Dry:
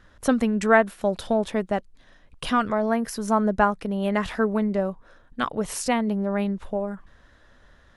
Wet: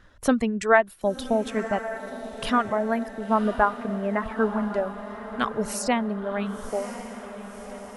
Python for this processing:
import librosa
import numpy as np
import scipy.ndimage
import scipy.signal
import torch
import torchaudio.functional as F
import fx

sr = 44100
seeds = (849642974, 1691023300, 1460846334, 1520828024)

p1 = fx.lowpass(x, sr, hz=2100.0, slope=24, at=(3.08, 4.63))
p2 = fx.dereverb_blind(p1, sr, rt60_s=1.9)
y = p2 + fx.echo_diffused(p2, sr, ms=1053, feedback_pct=56, wet_db=-11.5, dry=0)